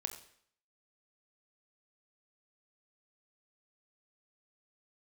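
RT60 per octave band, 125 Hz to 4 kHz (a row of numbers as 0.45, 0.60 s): 0.60, 0.60, 0.60, 0.60, 0.60, 0.60 s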